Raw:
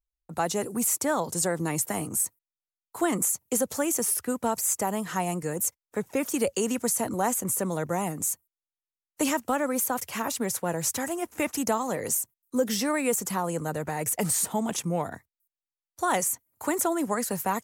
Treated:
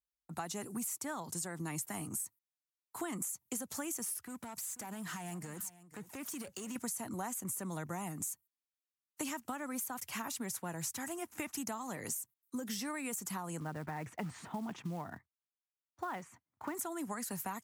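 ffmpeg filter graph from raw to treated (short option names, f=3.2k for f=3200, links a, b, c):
-filter_complex "[0:a]asettb=1/sr,asplit=3[a][b][c];[a]atrim=end=4.184[d];[b]atrim=start=4.18:end=6.76,asetpts=PTS-STARTPTS,afade=t=in:d=0.004:c=qsin,afade=t=out:st=2.576:d=0.004:c=qsin,acompressor=threshold=-31dB:ratio=8:attack=3.2:release=140:knee=1:detection=peak,asoftclip=type=hard:threshold=-32dB,aecho=1:1:487:0.141,atrim=end_sample=113778[e];[c]atrim=start=6.756[f];[d][e]acrossfade=d=0.004:c1=hsin:c2=qsin[g];[g][f]acrossfade=d=0.004:c1=qsin:c2=hsin,asettb=1/sr,asplit=3[h][i][j];[h]atrim=end=13.604[k];[i]atrim=start=13.6:end=16.75,asetpts=PTS-STARTPTS,afade=t=in:d=0.004:c=qsin,afade=t=out:st=3.146:d=0.004:c=qsin,lowpass=2.1k,acrusher=bits=6:mode=log:mix=0:aa=0.000001[l];[j]atrim=start=16.746[m];[k][l]acrossfade=d=0.004:c1=hsin:c2=qsin[n];[n][m]acrossfade=d=0.004:c1=qsin:c2=hsin,highpass=83,equalizer=f=500:t=o:w=0.74:g=-10.5,acompressor=threshold=-32dB:ratio=6,volume=-4.5dB"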